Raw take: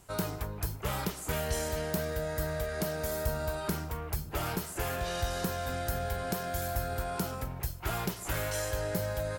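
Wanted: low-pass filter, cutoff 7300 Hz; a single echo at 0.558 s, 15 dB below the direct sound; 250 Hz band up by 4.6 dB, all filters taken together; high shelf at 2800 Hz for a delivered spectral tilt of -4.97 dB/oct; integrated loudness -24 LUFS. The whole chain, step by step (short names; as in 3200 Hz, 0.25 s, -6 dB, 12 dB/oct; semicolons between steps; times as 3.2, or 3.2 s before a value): LPF 7300 Hz; bell 250 Hz +7 dB; high shelf 2800 Hz +3.5 dB; echo 0.558 s -15 dB; gain +9 dB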